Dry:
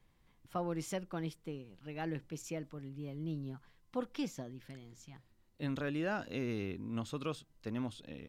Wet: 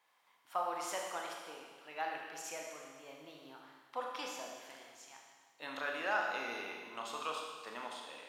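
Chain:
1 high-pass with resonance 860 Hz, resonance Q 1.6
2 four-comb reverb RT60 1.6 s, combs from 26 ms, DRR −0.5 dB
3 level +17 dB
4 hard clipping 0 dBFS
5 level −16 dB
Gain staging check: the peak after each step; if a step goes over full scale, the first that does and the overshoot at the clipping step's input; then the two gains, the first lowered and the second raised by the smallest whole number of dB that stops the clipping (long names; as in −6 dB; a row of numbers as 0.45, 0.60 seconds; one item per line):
−23.5, −22.5, −5.5, −5.5, −21.5 dBFS
no step passes full scale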